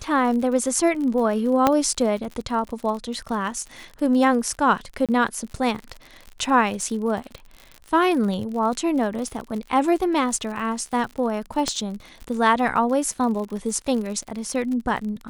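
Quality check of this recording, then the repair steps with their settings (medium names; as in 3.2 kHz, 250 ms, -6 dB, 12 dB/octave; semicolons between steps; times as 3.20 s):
crackle 53 per s -30 dBFS
1.67 s: pop -4 dBFS
5.06–5.09 s: dropout 27 ms
11.68 s: pop -10 dBFS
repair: de-click; interpolate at 5.06 s, 27 ms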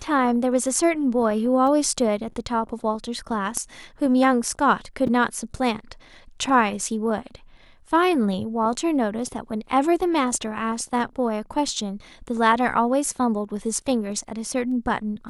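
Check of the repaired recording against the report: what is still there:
1.67 s: pop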